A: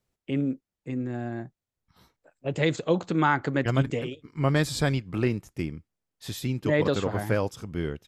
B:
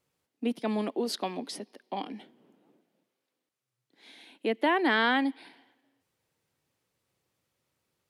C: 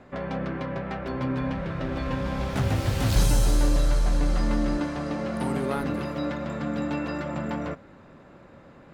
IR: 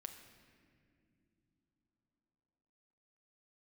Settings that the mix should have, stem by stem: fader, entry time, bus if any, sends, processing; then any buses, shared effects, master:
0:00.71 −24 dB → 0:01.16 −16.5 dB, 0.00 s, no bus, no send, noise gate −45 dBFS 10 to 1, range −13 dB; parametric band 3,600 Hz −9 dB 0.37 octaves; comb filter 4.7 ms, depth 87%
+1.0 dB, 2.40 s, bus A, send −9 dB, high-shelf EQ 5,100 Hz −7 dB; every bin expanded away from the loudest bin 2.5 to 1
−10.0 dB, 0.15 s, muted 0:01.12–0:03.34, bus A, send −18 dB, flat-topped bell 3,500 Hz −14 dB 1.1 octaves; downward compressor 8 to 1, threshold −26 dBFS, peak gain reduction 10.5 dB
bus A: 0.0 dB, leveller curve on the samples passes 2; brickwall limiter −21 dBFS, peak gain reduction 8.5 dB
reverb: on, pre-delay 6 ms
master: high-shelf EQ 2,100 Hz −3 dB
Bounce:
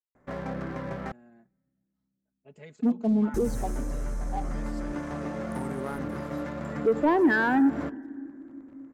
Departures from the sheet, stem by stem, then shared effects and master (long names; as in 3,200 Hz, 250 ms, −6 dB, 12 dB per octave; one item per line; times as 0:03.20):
stem A −24.0 dB → −32.0 dB
stem B: send −9 dB → −2 dB
master: missing high-shelf EQ 2,100 Hz −3 dB